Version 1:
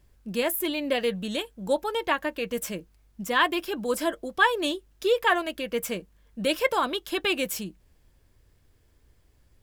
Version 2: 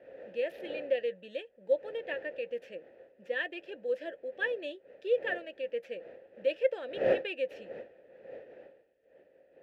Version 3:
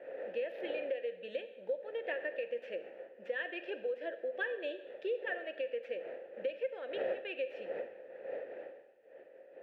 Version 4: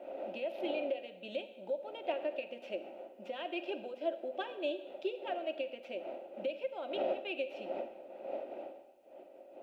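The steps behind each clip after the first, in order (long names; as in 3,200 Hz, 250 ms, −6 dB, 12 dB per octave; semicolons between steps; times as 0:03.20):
running median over 5 samples; wind on the microphone 630 Hz −32 dBFS; formant filter e
bass and treble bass −14 dB, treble −14 dB; downward compressor 6 to 1, threshold −41 dBFS, peak gain reduction 18 dB; convolution reverb RT60 1.0 s, pre-delay 33 ms, DRR 11 dB; level +6.5 dB
phaser with its sweep stopped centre 470 Hz, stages 6; level +8.5 dB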